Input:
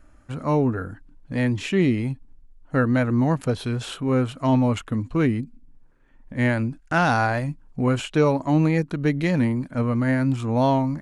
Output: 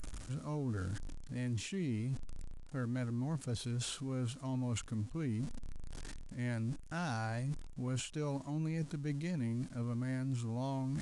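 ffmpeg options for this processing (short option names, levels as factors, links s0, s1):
-af "aeval=exprs='val(0)+0.5*0.0158*sgn(val(0))':c=same,bass=f=250:g=8,treble=f=4000:g=12,areverse,acompressor=threshold=0.0398:ratio=4,areverse,aresample=22050,aresample=44100,volume=0.355"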